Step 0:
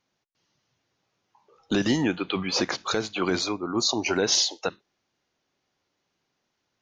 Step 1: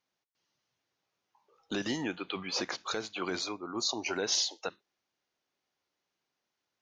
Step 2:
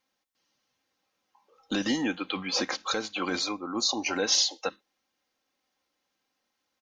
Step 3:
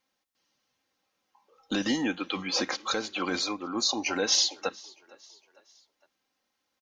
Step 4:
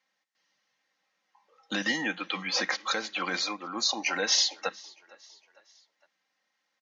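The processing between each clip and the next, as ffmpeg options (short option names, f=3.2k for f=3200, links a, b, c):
-af "lowshelf=f=260:g=-8.5,volume=-7dB"
-af "aecho=1:1:3.8:0.57,volume=4dB"
-filter_complex "[0:a]asplit=4[a][b][c][d];[b]adelay=457,afreqshift=34,volume=-24dB[e];[c]adelay=914,afreqshift=68,volume=-30.2dB[f];[d]adelay=1371,afreqshift=102,volume=-36.4dB[g];[a][e][f][g]amix=inputs=4:normalize=0"
-af "highpass=f=160:w=0.5412,highpass=f=160:w=1.3066,equalizer=f=260:t=q:w=4:g=-9,equalizer=f=390:t=q:w=4:g=-9,equalizer=f=1.9k:t=q:w=4:g=9,lowpass=f=7.1k:w=0.5412,lowpass=f=7.1k:w=1.3066"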